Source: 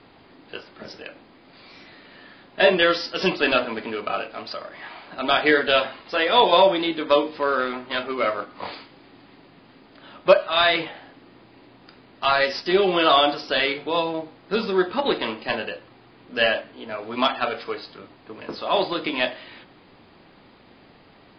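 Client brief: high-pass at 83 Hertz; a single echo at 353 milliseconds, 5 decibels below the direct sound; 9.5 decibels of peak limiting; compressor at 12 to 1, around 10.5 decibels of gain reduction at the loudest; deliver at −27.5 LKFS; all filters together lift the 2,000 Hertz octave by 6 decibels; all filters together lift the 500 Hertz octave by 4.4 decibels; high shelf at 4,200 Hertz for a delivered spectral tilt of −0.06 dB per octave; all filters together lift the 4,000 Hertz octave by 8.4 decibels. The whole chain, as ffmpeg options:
ffmpeg -i in.wav -af "highpass=83,equalizer=frequency=500:width_type=o:gain=5,equalizer=frequency=2000:width_type=o:gain=4.5,equalizer=frequency=4000:width_type=o:gain=6,highshelf=frequency=4200:gain=5.5,acompressor=threshold=-15dB:ratio=12,alimiter=limit=-13dB:level=0:latency=1,aecho=1:1:353:0.562,volume=-3.5dB" out.wav

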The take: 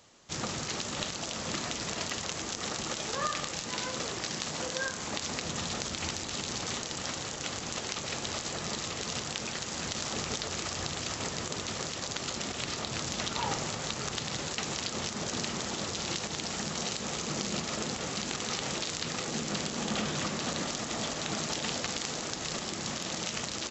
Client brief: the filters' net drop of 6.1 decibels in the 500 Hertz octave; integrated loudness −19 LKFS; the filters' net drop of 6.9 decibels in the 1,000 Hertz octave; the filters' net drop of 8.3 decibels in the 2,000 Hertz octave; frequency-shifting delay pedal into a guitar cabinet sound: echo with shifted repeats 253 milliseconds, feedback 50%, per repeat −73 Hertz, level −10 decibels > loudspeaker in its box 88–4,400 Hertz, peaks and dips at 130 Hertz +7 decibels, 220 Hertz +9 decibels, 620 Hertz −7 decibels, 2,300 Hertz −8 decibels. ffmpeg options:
ffmpeg -i in.wav -filter_complex "[0:a]equalizer=frequency=500:width_type=o:gain=-4,equalizer=frequency=1000:width_type=o:gain=-5,equalizer=frequency=2000:width_type=o:gain=-5.5,asplit=6[link_01][link_02][link_03][link_04][link_05][link_06];[link_02]adelay=253,afreqshift=-73,volume=-10dB[link_07];[link_03]adelay=506,afreqshift=-146,volume=-16dB[link_08];[link_04]adelay=759,afreqshift=-219,volume=-22dB[link_09];[link_05]adelay=1012,afreqshift=-292,volume=-28.1dB[link_10];[link_06]adelay=1265,afreqshift=-365,volume=-34.1dB[link_11];[link_01][link_07][link_08][link_09][link_10][link_11]amix=inputs=6:normalize=0,highpass=88,equalizer=frequency=130:width_type=q:width=4:gain=7,equalizer=frequency=220:width_type=q:width=4:gain=9,equalizer=frequency=620:width_type=q:width=4:gain=-7,equalizer=frequency=2300:width_type=q:width=4:gain=-8,lowpass=frequency=4400:width=0.5412,lowpass=frequency=4400:width=1.3066,volume=17dB" out.wav

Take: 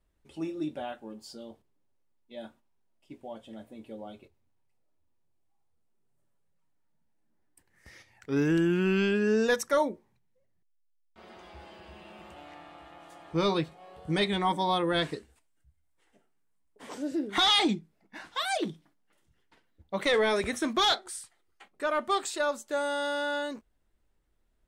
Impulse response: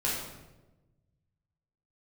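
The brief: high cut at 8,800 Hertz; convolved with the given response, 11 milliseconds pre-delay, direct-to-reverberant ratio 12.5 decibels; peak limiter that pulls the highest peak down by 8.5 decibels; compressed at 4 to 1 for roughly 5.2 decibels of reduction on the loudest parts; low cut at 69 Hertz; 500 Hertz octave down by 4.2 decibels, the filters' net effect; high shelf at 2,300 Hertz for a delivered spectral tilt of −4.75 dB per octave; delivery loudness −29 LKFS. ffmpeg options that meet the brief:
-filter_complex "[0:a]highpass=69,lowpass=8800,equalizer=frequency=500:width_type=o:gain=-5,highshelf=frequency=2300:gain=-6.5,acompressor=threshold=-30dB:ratio=4,alimiter=level_in=6dB:limit=-24dB:level=0:latency=1,volume=-6dB,asplit=2[link_01][link_02];[1:a]atrim=start_sample=2205,adelay=11[link_03];[link_02][link_03]afir=irnorm=-1:irlink=0,volume=-20.5dB[link_04];[link_01][link_04]amix=inputs=2:normalize=0,volume=11dB"

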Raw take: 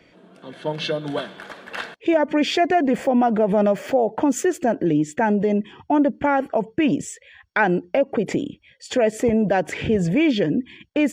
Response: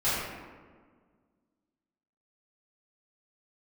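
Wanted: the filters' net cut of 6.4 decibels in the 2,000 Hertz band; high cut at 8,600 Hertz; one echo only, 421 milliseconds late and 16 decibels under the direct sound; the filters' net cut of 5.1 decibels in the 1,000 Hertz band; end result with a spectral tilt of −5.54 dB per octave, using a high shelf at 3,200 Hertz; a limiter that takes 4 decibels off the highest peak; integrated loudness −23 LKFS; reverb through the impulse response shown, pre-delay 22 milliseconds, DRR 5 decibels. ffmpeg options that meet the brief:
-filter_complex "[0:a]lowpass=8600,equalizer=frequency=1000:width_type=o:gain=-7,equalizer=frequency=2000:width_type=o:gain=-7.5,highshelf=frequency=3200:gain=4.5,alimiter=limit=-14.5dB:level=0:latency=1,aecho=1:1:421:0.158,asplit=2[link_01][link_02];[1:a]atrim=start_sample=2205,adelay=22[link_03];[link_02][link_03]afir=irnorm=-1:irlink=0,volume=-17dB[link_04];[link_01][link_04]amix=inputs=2:normalize=0"

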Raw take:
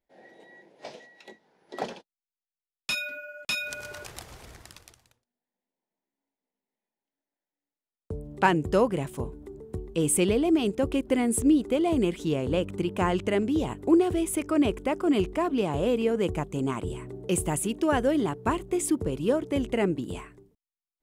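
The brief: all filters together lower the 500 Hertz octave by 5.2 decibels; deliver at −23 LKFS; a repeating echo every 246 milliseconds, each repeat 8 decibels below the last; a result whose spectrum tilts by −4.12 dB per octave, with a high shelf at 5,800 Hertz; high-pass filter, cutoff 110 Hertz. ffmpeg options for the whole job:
ffmpeg -i in.wav -af "highpass=110,equalizer=frequency=500:width_type=o:gain=-7,highshelf=frequency=5800:gain=3.5,aecho=1:1:246|492|738|984|1230:0.398|0.159|0.0637|0.0255|0.0102,volume=5dB" out.wav

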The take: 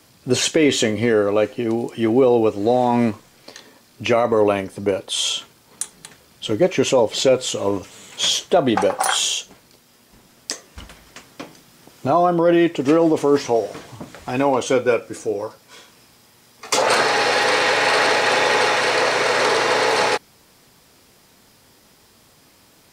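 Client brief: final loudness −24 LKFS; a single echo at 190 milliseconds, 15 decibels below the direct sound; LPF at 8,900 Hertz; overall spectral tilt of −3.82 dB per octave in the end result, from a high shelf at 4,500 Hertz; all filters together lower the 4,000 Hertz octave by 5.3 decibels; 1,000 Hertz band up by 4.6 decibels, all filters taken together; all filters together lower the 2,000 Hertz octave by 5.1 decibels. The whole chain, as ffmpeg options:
ffmpeg -i in.wav -af "lowpass=8900,equalizer=frequency=1000:width_type=o:gain=8,equalizer=frequency=2000:width_type=o:gain=-9,equalizer=frequency=4000:width_type=o:gain=-8,highshelf=frequency=4500:gain=7.5,aecho=1:1:190:0.178,volume=-6.5dB" out.wav

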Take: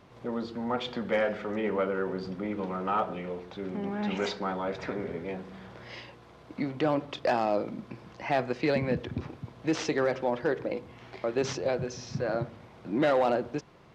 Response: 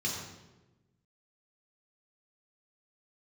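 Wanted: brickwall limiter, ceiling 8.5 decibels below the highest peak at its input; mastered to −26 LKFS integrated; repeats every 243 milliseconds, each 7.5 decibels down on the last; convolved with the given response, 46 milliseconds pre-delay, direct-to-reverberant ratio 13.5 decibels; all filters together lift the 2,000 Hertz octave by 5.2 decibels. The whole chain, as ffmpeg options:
-filter_complex "[0:a]equalizer=frequency=2000:width_type=o:gain=6.5,alimiter=limit=-21.5dB:level=0:latency=1,aecho=1:1:243|486|729|972|1215:0.422|0.177|0.0744|0.0312|0.0131,asplit=2[link_01][link_02];[1:a]atrim=start_sample=2205,adelay=46[link_03];[link_02][link_03]afir=irnorm=-1:irlink=0,volume=-18.5dB[link_04];[link_01][link_04]amix=inputs=2:normalize=0,volume=6.5dB"

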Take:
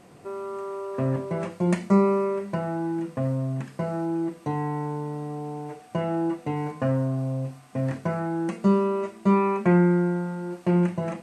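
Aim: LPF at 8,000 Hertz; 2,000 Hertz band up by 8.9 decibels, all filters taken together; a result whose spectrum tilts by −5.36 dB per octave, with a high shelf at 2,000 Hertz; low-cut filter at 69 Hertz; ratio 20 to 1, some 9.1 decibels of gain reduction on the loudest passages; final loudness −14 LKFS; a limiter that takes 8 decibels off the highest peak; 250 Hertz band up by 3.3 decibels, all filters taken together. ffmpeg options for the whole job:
ffmpeg -i in.wav -af "highpass=69,lowpass=8000,equalizer=frequency=250:width_type=o:gain=5,highshelf=frequency=2000:gain=9,equalizer=frequency=2000:width_type=o:gain=6,acompressor=threshold=-20dB:ratio=20,volume=14.5dB,alimiter=limit=-5.5dB:level=0:latency=1" out.wav

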